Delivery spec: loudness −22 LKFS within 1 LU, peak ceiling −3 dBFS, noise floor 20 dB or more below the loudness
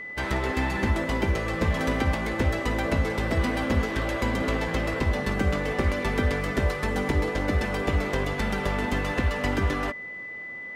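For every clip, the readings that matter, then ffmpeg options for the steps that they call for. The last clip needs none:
interfering tone 2,000 Hz; level of the tone −35 dBFS; integrated loudness −26.5 LKFS; sample peak −12.5 dBFS; target loudness −22.0 LKFS
→ -af "bandreject=frequency=2000:width=30"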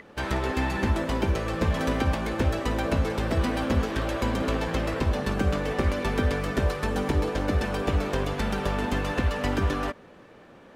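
interfering tone none found; integrated loudness −27.0 LKFS; sample peak −13.0 dBFS; target loudness −22.0 LKFS
→ -af "volume=5dB"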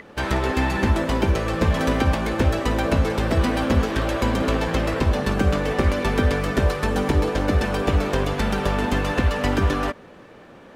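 integrated loudness −22.0 LKFS; sample peak −8.0 dBFS; background noise floor −45 dBFS

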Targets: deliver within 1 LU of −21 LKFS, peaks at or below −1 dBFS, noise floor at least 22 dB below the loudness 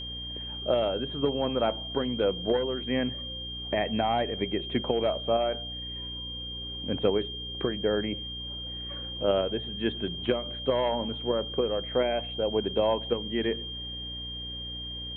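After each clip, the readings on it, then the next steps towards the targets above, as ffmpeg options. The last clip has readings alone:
mains hum 60 Hz; hum harmonics up to 300 Hz; level of the hum −40 dBFS; interfering tone 3,200 Hz; level of the tone −36 dBFS; integrated loudness −29.5 LKFS; sample peak −11.0 dBFS; target loudness −21.0 LKFS
→ -af "bandreject=frequency=60:width_type=h:width=4,bandreject=frequency=120:width_type=h:width=4,bandreject=frequency=180:width_type=h:width=4,bandreject=frequency=240:width_type=h:width=4,bandreject=frequency=300:width_type=h:width=4"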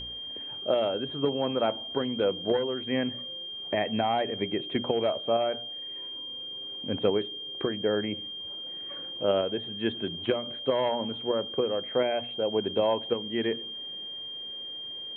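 mains hum none found; interfering tone 3,200 Hz; level of the tone −36 dBFS
→ -af "bandreject=frequency=3200:width=30"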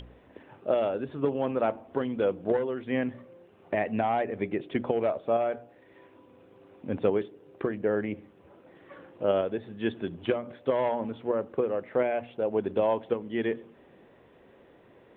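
interfering tone none found; integrated loudness −29.5 LKFS; sample peak −12.0 dBFS; target loudness −21.0 LKFS
→ -af "volume=8.5dB"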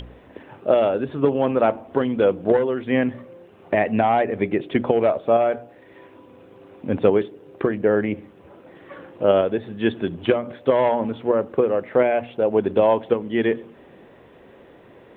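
integrated loudness −21.0 LKFS; sample peak −3.5 dBFS; background noise floor −49 dBFS

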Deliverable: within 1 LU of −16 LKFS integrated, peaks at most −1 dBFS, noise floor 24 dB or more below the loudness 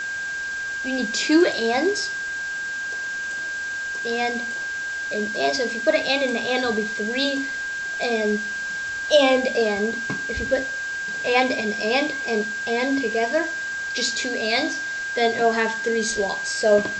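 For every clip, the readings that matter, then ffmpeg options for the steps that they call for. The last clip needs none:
interfering tone 1,600 Hz; level of the tone −26 dBFS; background noise floor −29 dBFS; target noise floor −47 dBFS; integrated loudness −23.0 LKFS; sample peak −4.0 dBFS; target loudness −16.0 LKFS
→ -af "bandreject=frequency=1600:width=30"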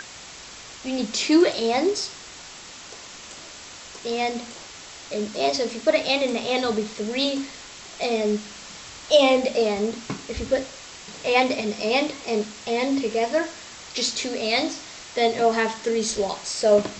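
interfering tone none found; background noise floor −42 dBFS; target noise floor −48 dBFS
→ -af "afftdn=noise_reduction=6:noise_floor=-42"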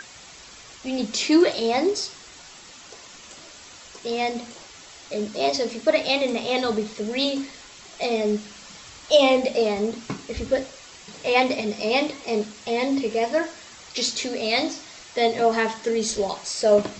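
background noise floor −45 dBFS; target noise floor −48 dBFS
→ -af "afftdn=noise_reduction=6:noise_floor=-45"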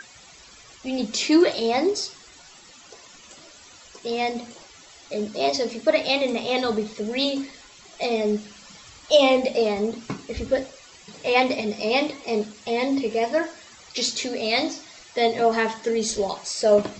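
background noise floor −49 dBFS; integrated loudness −23.5 LKFS; sample peak −4.5 dBFS; target loudness −16.0 LKFS
→ -af "volume=7.5dB,alimiter=limit=-1dB:level=0:latency=1"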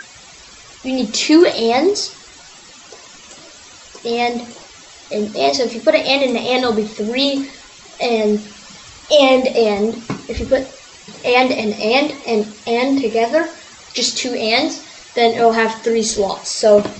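integrated loudness −16.5 LKFS; sample peak −1.0 dBFS; background noise floor −41 dBFS

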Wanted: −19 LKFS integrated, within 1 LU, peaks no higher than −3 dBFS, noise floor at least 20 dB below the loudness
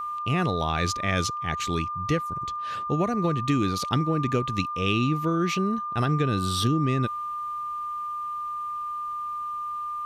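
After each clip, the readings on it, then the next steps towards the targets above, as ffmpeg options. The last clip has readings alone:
interfering tone 1,200 Hz; level of the tone −29 dBFS; integrated loudness −27.0 LKFS; sample peak −11.0 dBFS; target loudness −19.0 LKFS
→ -af "bandreject=frequency=1200:width=30"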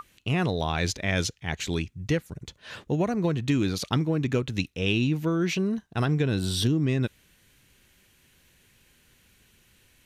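interfering tone none found; integrated loudness −27.0 LKFS; sample peak −12.5 dBFS; target loudness −19.0 LKFS
→ -af "volume=8dB"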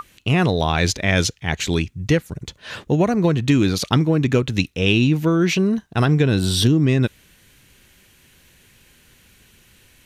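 integrated loudness −19.0 LKFS; sample peak −4.5 dBFS; background noise floor −54 dBFS

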